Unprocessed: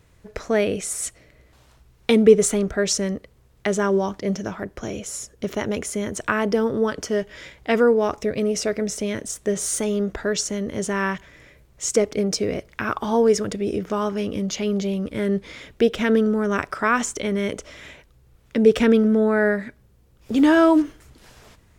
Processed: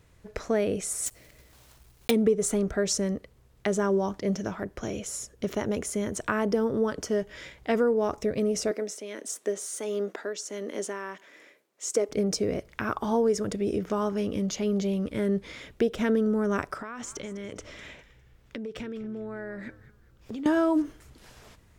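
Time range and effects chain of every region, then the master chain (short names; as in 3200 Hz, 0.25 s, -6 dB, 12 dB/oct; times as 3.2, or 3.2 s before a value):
1.06–2.12 block floating point 3-bit + high shelf 4000 Hz +6 dB
8.71–12.09 HPF 270 Hz 24 dB/oct + tremolo 1.5 Hz, depth 61%
16.78–20.46 bell 11000 Hz -6.5 dB 0.81 oct + compressor 12:1, threshold -30 dBFS + frequency-shifting echo 0.202 s, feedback 33%, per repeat -98 Hz, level -16 dB
whole clip: dynamic EQ 2700 Hz, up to -6 dB, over -38 dBFS, Q 0.72; compressor 4:1, threshold -17 dBFS; gain -3 dB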